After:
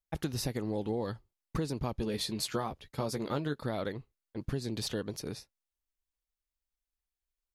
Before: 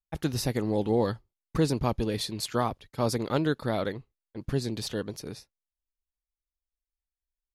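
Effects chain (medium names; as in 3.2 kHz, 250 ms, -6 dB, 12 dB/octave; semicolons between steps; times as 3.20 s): compression, threshold -30 dBFS, peak gain reduction 11 dB; 1.99–3.61 s: doubling 14 ms -8 dB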